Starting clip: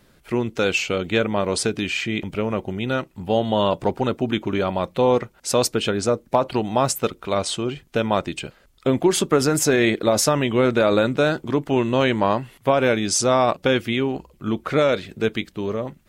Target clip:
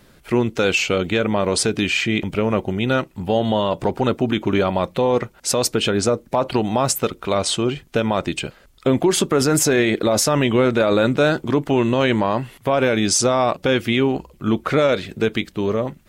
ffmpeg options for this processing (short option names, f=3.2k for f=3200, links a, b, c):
-af "alimiter=limit=-12.5dB:level=0:latency=1:release=71,acontrast=23"